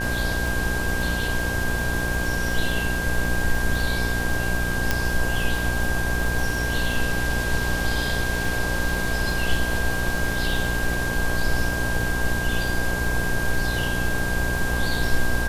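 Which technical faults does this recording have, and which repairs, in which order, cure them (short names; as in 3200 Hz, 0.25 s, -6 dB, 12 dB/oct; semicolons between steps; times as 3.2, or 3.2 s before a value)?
buzz 60 Hz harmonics 18 -28 dBFS
crackle 56/s -30 dBFS
tone 1600 Hz -27 dBFS
4.91 pop -6 dBFS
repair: de-click; de-hum 60 Hz, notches 18; notch 1600 Hz, Q 30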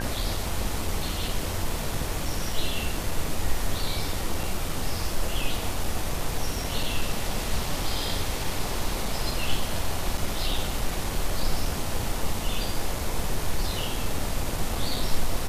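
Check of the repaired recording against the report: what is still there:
none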